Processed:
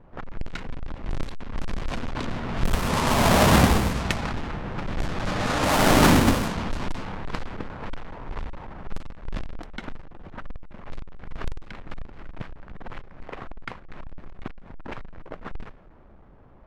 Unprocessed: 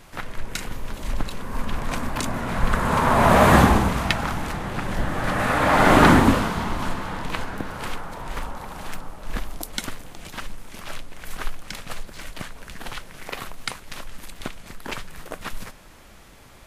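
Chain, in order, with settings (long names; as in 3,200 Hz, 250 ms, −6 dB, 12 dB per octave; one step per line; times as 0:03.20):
each half-wave held at its own peak
low-pass that shuts in the quiet parts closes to 1,000 Hz, open at −11 dBFS
level −7.5 dB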